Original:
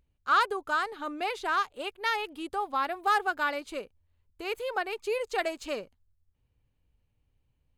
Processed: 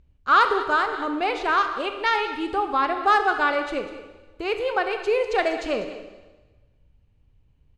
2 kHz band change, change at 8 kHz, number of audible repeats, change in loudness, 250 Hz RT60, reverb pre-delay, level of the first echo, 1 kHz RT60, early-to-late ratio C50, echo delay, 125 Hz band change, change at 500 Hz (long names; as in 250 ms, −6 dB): +7.0 dB, can't be measured, 1, +7.5 dB, 1.2 s, 20 ms, −15.0 dB, 1.2 s, 7.5 dB, 195 ms, can't be measured, +9.0 dB